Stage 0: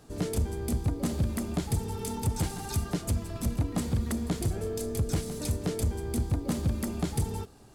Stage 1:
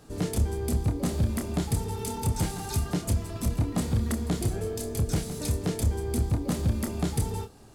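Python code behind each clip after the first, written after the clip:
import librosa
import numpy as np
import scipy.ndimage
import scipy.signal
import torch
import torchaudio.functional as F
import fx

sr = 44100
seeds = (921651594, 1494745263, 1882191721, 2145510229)

y = fx.doubler(x, sr, ms=28.0, db=-7.5)
y = y * librosa.db_to_amplitude(1.5)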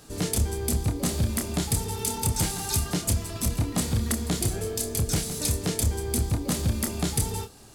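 y = fx.high_shelf(x, sr, hz=2000.0, db=9.5)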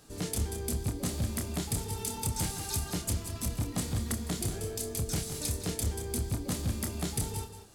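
y = x + 10.0 ** (-9.5 / 20.0) * np.pad(x, (int(185 * sr / 1000.0), 0))[:len(x)]
y = y * librosa.db_to_amplitude(-7.0)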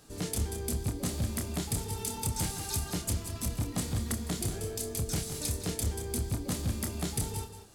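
y = x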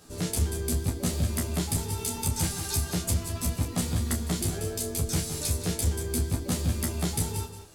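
y = fx.doubler(x, sr, ms=12.0, db=-2)
y = y * librosa.db_to_amplitude(2.0)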